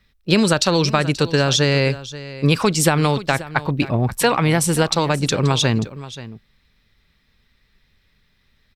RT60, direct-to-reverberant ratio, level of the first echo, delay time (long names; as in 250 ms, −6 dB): no reverb audible, no reverb audible, −16.0 dB, 531 ms